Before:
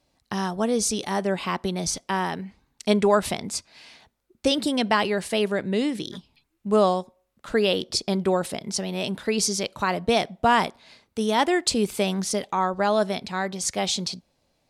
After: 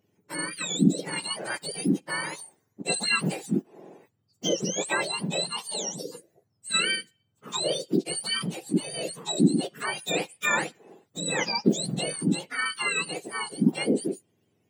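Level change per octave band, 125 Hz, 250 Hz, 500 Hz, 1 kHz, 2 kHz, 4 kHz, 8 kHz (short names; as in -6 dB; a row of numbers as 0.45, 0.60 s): 0.0, -1.0, -8.5, -9.5, +1.0, -1.0, -1.5 dB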